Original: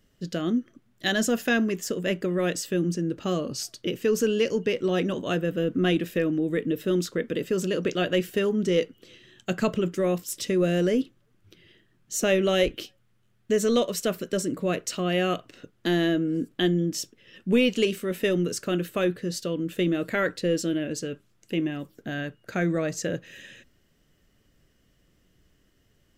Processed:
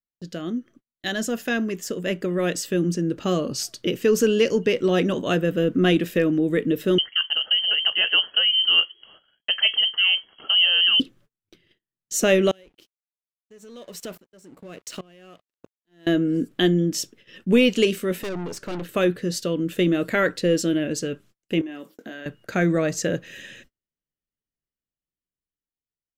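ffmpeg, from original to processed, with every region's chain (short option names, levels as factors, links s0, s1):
-filter_complex "[0:a]asettb=1/sr,asplit=3[s0][s1][s2];[s0]atrim=end=6.984[s3];[s1]atrim=start=6.98:end=11,asetpts=PTS-STARTPTS,afade=t=in:d=0.004:c=qsin,afade=t=out:st=4.016:d=0.004:c=qsin,highshelf=f=2400:g=-7.5,lowpass=f=2800:t=q:w=0.5098,lowpass=f=2800:t=q:w=0.6013,lowpass=f=2800:t=q:w=0.9,lowpass=f=2800:t=q:w=2.563,afreqshift=-3300[s4];[s2]atrim=start=10.996[s5];[s3][s4]acrossfade=d=0.004:c1=hsin:c2=qsin[s6];[s6][s5]acrossfade=d=0.004:c1=qsin:c2=hsin,asettb=1/sr,asplit=3[s7][s8][s9];[s7]atrim=end=12.514[s10];[s8]atrim=start=12.51:end=16.07,asetpts=PTS-STARTPTS,afade=t=in:d=0.004:c=qsin,afade=t=out:st=3.556:d=0.004:c=qsin,acompressor=threshold=0.0282:ratio=5:attack=3.2:release=140:knee=1:detection=peak,aeval=exprs='sgn(val(0))*max(abs(val(0))-0.00447,0)':c=same,aeval=exprs='val(0)*pow(10,-23*if(lt(mod(-1.2*n/s,1),2*abs(-1.2)/1000),1-mod(-1.2*n/s,1)/(2*abs(-1.2)/1000),(mod(-1.2*n/s,1)-2*abs(-1.2)/1000)/(1-2*abs(-1.2)/1000))/20)':c=same[s11];[s9]atrim=start=16.066[s12];[s10][s11]acrossfade=d=0.004:c1=hsin:c2=qsin[s13];[s13][s12]acrossfade=d=0.004:c1=qsin:c2=hsin,asettb=1/sr,asplit=3[s14][s15][s16];[s14]atrim=end=18.234[s17];[s15]atrim=start=18.23:end=18.89,asetpts=PTS-STARTPTS,afade=t=in:d=0.004:c=qsin,afade=t=out:st=0.656:d=0.004:c=qsin,highshelf=f=5300:g=-10.5,acompressor=mode=upward:threshold=0.0178:ratio=2.5:attack=3.2:release=140:knee=2.83:detection=peak,aeval=exprs='(tanh(39.8*val(0)+0.6)-tanh(0.6))/39.8':c=same[s18];[s16]atrim=start=18.886[s19];[s17][s18]acrossfade=d=0.004:c1=hsin:c2=qsin[s20];[s20][s19]acrossfade=d=0.004:c1=qsin:c2=hsin,asettb=1/sr,asplit=3[s21][s22][s23];[s21]atrim=end=21.614[s24];[s22]atrim=start=21.61:end=22.26,asetpts=PTS-STARTPTS,afade=t=in:d=0.004:c=qsin,afade=t=out:st=0.646:d=0.004:c=qsin,highpass=f=220:w=0.5412,highpass=f=220:w=1.3066,acompressor=threshold=0.0141:ratio=6:attack=3.2:release=140:knee=1:detection=peak,asplit=2[s25][s26];[s26]adelay=23,volume=0.376[s27];[s25][s27]amix=inputs=2:normalize=0,atrim=end_sample=28665[s28];[s23]atrim=start=22.256[s29];[s24][s28]acrossfade=d=0.004:c1=hsin:c2=qsin[s30];[s30][s29]acrossfade=d=0.004:c1=qsin:c2=hsin,dynaudnorm=f=650:g=7:m=2.51,equalizer=f=100:t=o:w=0.62:g=-3,agate=range=0.0178:threshold=0.00501:ratio=16:detection=peak,volume=0.708"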